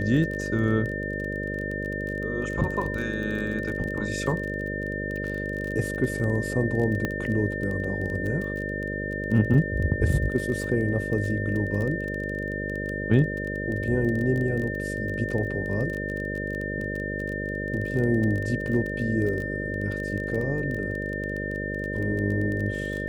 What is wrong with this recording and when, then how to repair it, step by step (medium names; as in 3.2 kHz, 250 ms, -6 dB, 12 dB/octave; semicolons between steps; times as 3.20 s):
buzz 50 Hz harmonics 12 -32 dBFS
crackle 22 per s -30 dBFS
whine 1.8 kHz -32 dBFS
7.05 s: pop -14 dBFS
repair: de-click; band-stop 1.8 kHz, Q 30; de-hum 50 Hz, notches 12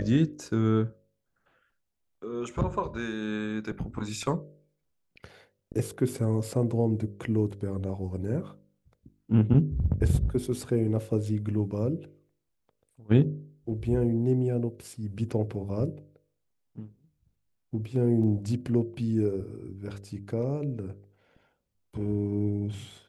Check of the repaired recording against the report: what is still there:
nothing left